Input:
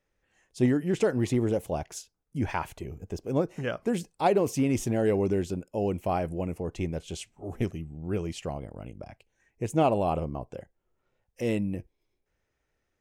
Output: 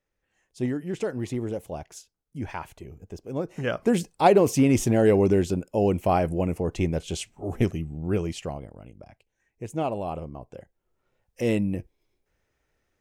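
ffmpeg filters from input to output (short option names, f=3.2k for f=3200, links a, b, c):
-af "volume=14.5dB,afade=t=in:st=3.38:d=0.44:silence=0.316228,afade=t=out:st=7.99:d=0.82:silence=0.298538,afade=t=in:st=10.39:d=1.03:silence=0.375837"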